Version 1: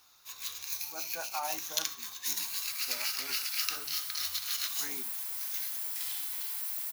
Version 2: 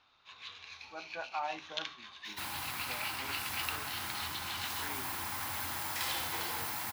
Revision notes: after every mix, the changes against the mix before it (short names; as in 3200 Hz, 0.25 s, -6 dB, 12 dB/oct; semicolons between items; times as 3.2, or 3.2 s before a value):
first sound: add Chebyshev low-pass 3300 Hz, order 3; second sound: remove differentiator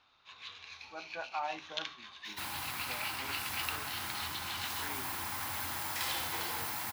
none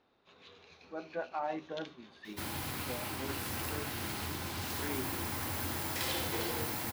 first sound -10.5 dB; master: add resonant low shelf 650 Hz +8.5 dB, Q 1.5